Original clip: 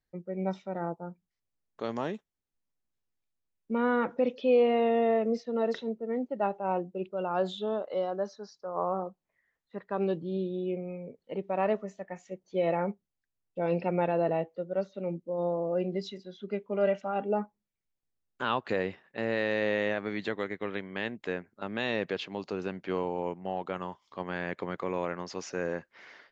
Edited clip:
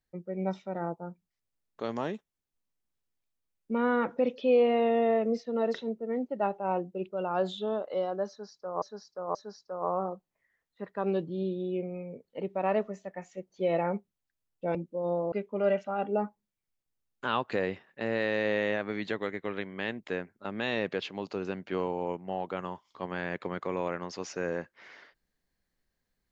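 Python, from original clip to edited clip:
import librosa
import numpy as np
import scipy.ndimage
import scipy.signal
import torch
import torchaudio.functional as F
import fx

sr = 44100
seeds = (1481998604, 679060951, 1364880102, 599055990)

y = fx.edit(x, sr, fx.repeat(start_s=8.29, length_s=0.53, count=3),
    fx.cut(start_s=13.69, length_s=1.4),
    fx.cut(start_s=15.66, length_s=0.83), tone=tone)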